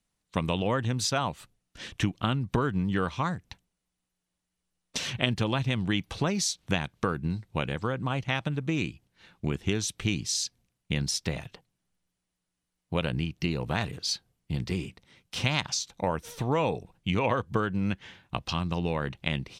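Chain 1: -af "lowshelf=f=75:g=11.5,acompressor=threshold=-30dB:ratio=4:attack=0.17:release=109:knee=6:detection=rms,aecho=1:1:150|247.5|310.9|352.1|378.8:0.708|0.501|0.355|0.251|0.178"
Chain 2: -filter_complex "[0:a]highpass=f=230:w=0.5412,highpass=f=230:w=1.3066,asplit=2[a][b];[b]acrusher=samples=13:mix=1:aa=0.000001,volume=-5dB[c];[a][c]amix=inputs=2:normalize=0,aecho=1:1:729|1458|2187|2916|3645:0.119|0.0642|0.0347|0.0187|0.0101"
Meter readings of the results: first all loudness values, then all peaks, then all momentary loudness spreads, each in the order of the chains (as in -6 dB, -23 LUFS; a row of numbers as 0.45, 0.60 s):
-35.5, -29.5 LUFS; -19.5, -4.0 dBFS; 7, 14 LU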